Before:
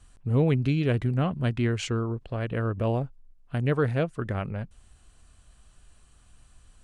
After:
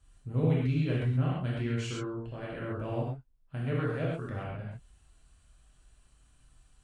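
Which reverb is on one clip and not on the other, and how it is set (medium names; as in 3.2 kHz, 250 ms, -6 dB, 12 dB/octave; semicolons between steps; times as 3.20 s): gated-style reverb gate 160 ms flat, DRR -6 dB; trim -13 dB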